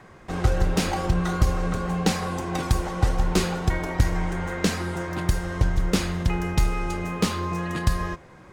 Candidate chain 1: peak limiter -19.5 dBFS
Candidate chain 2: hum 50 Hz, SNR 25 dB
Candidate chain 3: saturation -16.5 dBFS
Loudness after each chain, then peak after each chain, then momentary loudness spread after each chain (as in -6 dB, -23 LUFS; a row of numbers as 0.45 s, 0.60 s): -29.5 LUFS, -26.0 LUFS, -28.0 LUFS; -19.5 dBFS, -9.0 dBFS, -16.5 dBFS; 2 LU, 5 LU, 4 LU